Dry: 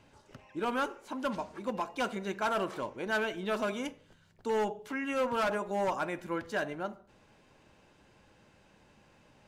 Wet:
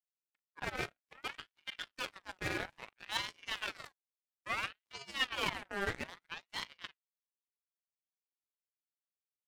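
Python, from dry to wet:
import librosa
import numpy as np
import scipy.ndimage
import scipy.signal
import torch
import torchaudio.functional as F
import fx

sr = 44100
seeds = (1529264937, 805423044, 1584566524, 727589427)

y = fx.room_early_taps(x, sr, ms=(38, 55), db=(-10.0, -14.0))
y = fx.power_curve(y, sr, exponent=3.0)
y = fx.ring_lfo(y, sr, carrier_hz=1800.0, swing_pct=45, hz=0.6)
y = y * librosa.db_to_amplitude(3.5)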